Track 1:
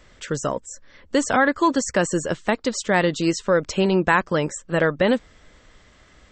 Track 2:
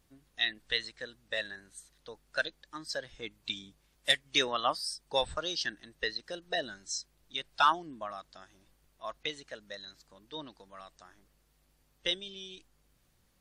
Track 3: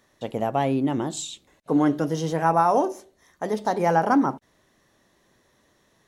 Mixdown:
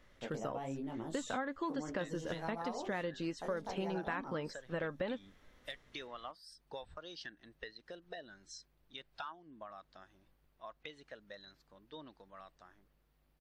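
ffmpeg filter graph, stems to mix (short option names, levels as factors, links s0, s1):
-filter_complex "[0:a]flanger=delay=3.4:depth=1.1:regen=77:speed=0.58:shape=triangular,lowpass=4000,volume=0.355[s0];[1:a]equalizer=f=7800:w=0.64:g=-14,acompressor=threshold=0.00794:ratio=4,adelay=1600,volume=0.668[s1];[2:a]bandreject=f=101:t=h:w=4,bandreject=f=202:t=h:w=4,bandreject=f=303:t=h:w=4,bandreject=f=404:t=h:w=4,acompressor=threshold=0.0316:ratio=2.5,flanger=delay=18:depth=6.8:speed=1,volume=0.398[s2];[s0][s1][s2]amix=inputs=3:normalize=0,acompressor=threshold=0.0178:ratio=4"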